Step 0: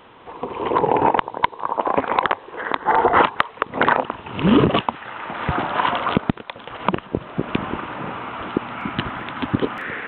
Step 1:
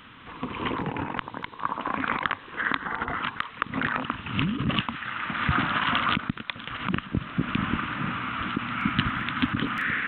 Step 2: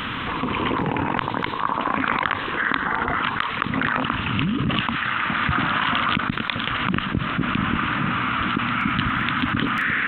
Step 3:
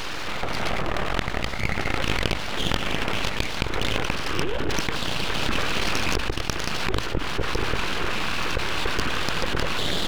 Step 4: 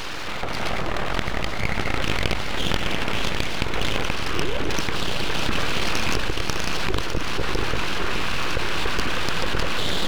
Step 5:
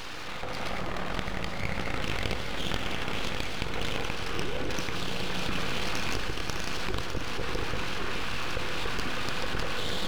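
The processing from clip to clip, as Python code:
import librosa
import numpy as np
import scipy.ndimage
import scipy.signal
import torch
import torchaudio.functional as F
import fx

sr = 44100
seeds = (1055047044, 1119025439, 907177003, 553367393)

y1 = fx.over_compress(x, sr, threshold_db=-21.0, ratio=-1.0)
y1 = fx.band_shelf(y1, sr, hz=580.0, db=-14.5, octaves=1.7)
y2 = fx.env_flatten(y1, sr, amount_pct=70)
y3 = np.abs(y2)
y3 = fx.hum_notches(y3, sr, base_hz=60, count=2)
y4 = fx.echo_feedback(y3, sr, ms=605, feedback_pct=53, wet_db=-8)
y5 = fx.rev_fdn(y4, sr, rt60_s=2.1, lf_ratio=1.55, hf_ratio=0.9, size_ms=12.0, drr_db=7.0)
y5 = F.gain(torch.from_numpy(y5), -8.0).numpy()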